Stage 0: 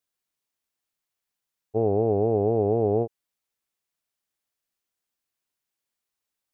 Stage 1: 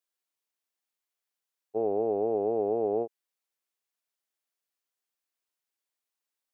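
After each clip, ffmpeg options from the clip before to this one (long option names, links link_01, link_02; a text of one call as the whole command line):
ffmpeg -i in.wav -af "highpass=310,volume=-3.5dB" out.wav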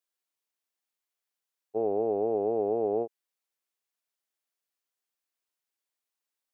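ffmpeg -i in.wav -af anull out.wav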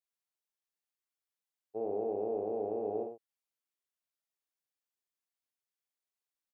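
ffmpeg -i in.wav -af "aecho=1:1:48|104:0.562|0.355,volume=-8.5dB" out.wav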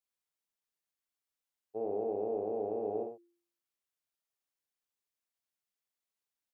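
ffmpeg -i in.wav -af "bandreject=frequency=172.5:width_type=h:width=4,bandreject=frequency=345:width_type=h:width=4" out.wav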